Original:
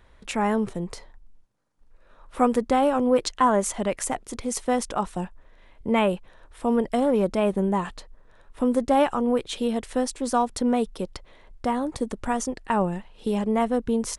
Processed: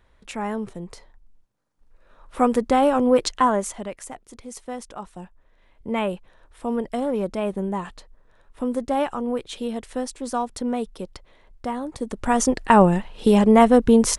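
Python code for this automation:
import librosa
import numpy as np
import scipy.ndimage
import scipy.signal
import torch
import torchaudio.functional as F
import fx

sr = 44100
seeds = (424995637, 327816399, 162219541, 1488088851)

y = fx.gain(x, sr, db=fx.line((0.8, -4.5), (2.85, 3.0), (3.35, 3.0), (4.02, -9.5), (5.1, -9.5), (6.01, -3.0), (11.96, -3.0), (12.49, 9.5)))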